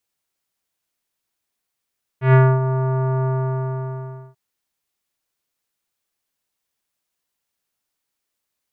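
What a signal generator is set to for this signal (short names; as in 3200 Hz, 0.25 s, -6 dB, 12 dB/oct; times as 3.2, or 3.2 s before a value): synth note square C3 24 dB/oct, low-pass 1200 Hz, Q 1.2, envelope 1 oct, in 0.36 s, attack 0.125 s, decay 0.26 s, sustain -10 dB, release 1.10 s, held 1.04 s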